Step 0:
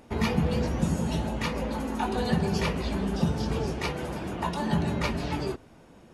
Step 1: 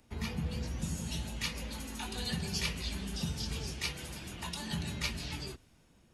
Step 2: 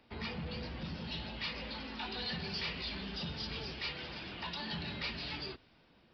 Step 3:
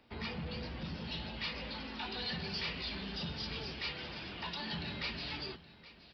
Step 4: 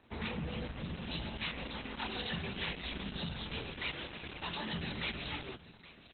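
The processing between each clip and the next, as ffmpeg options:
-filter_complex "[0:a]equalizer=f=570:w=0.32:g=-12,acrossover=split=150|600|2000[a][b][c][d];[d]dynaudnorm=f=270:g=7:m=9dB[e];[a][b][c][e]amix=inputs=4:normalize=0,volume=-5dB"
-af "lowshelf=f=190:g=-12,aresample=11025,asoftclip=type=tanh:threshold=-38dB,aresample=44100,volume=4dB"
-af "aecho=1:1:821:0.133"
-af "lowpass=f=4.8k:w=0.5412,lowpass=f=4.8k:w=1.3066,volume=3.5dB" -ar 48000 -c:a libopus -b:a 8k

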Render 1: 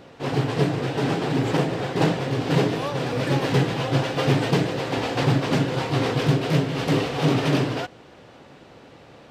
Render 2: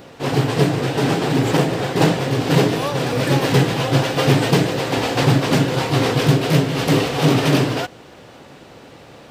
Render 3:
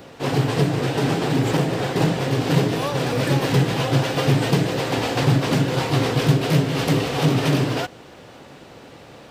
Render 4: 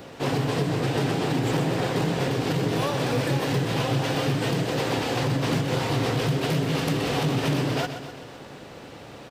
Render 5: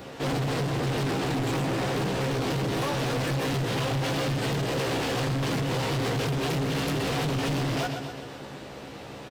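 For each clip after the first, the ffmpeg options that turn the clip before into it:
-af "highshelf=f=8.4k:g=12,volume=5dB"
-filter_complex "[0:a]acrossover=split=190[a][b];[b]acompressor=threshold=-18dB:ratio=6[c];[a][c]amix=inputs=2:normalize=0,volume=-1dB"
-af "alimiter=limit=-16dB:level=0:latency=1:release=152,aecho=1:1:127|254|381|508|635|762|889:0.316|0.18|0.103|0.0586|0.0334|0.019|0.0108"
-filter_complex "[0:a]asplit=2[a][b];[b]adelay=15,volume=-4dB[c];[a][c]amix=inputs=2:normalize=0,volume=25dB,asoftclip=hard,volume=-25dB"

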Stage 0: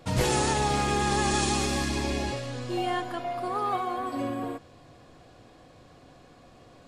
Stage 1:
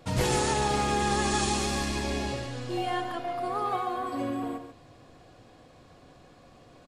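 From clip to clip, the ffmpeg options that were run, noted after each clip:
-filter_complex "[0:a]asplit=2[a][b];[b]adelay=139.9,volume=-8dB,highshelf=f=4k:g=-3.15[c];[a][c]amix=inputs=2:normalize=0,volume=-1.5dB"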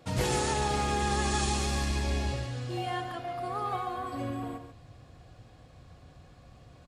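-af "highpass=41,bandreject=f=1k:w=25,asubboost=boost=5:cutoff=130,volume=-2.5dB"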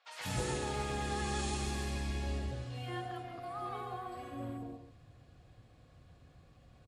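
-filter_complex "[0:a]acrossover=split=830|5700[a][b][c];[c]adelay=50[d];[a]adelay=190[e];[e][b][d]amix=inputs=3:normalize=0,volume=-6.5dB"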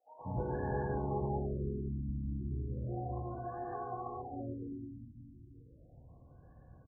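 -af "asuperstop=centerf=1300:order=8:qfactor=3.8,aecho=1:1:340|578|744.6|861.2|942.9:0.631|0.398|0.251|0.158|0.1,afftfilt=real='re*lt(b*sr/1024,320*pow(1800/320,0.5+0.5*sin(2*PI*0.34*pts/sr)))':imag='im*lt(b*sr/1024,320*pow(1800/320,0.5+0.5*sin(2*PI*0.34*pts/sr)))':win_size=1024:overlap=0.75"

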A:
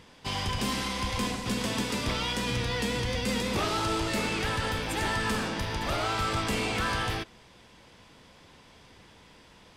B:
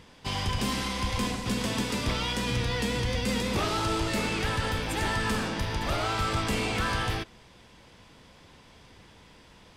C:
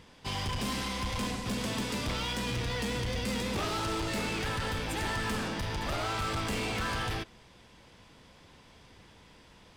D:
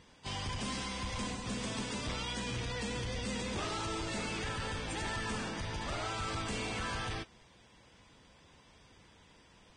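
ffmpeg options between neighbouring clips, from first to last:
-af "lowshelf=f=140:g=4"
-af "asoftclip=type=hard:threshold=-26.5dB,volume=-2.5dB"
-af "volume=-5dB" -ar 22050 -c:a libvorbis -b:a 16k

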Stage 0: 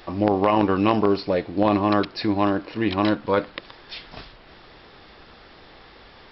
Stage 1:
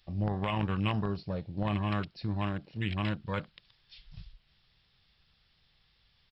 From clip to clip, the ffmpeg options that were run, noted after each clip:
-af "afwtdn=0.0316,firequalizer=gain_entry='entry(150,0);entry(280,-19);entry(3000,0)':delay=0.05:min_phase=1"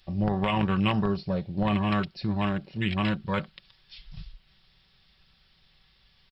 -af "aecho=1:1:5.3:0.38,volume=5.5dB"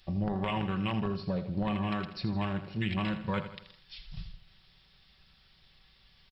-af "acompressor=threshold=-28dB:ratio=6,aecho=1:1:81|162|243|324|405:0.282|0.132|0.0623|0.0293|0.0138"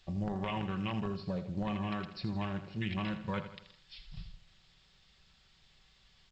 -af "volume=-4dB" -ar 16000 -c:a pcm_alaw

